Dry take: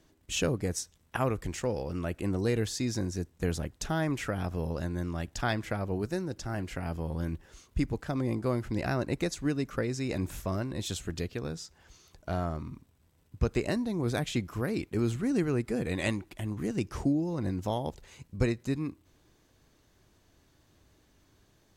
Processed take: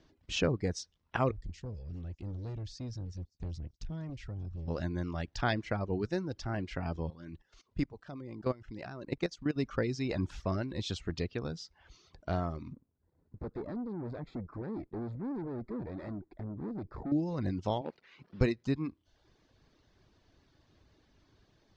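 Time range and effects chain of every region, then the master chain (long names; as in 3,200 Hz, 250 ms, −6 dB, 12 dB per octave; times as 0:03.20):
0:01.31–0:04.68: guitar amp tone stack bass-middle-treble 10-0-1 + leveller curve on the samples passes 3 + delay with a high-pass on its return 194 ms, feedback 61%, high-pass 4,400 Hz, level −20 dB
0:07.10–0:09.56: parametric band 63 Hz −13 dB 0.55 octaves + output level in coarse steps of 14 dB
0:12.73–0:17.12: tube saturation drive 39 dB, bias 0.75 + moving average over 15 samples + parametric band 300 Hz +5.5 dB 2.1 octaves
0:17.81–0:18.41: linear delta modulator 64 kbit/s, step −50.5 dBFS + band-pass filter 210–2,900 Hz
whole clip: Chebyshev low-pass filter 5,100 Hz, order 3; reverb reduction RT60 0.61 s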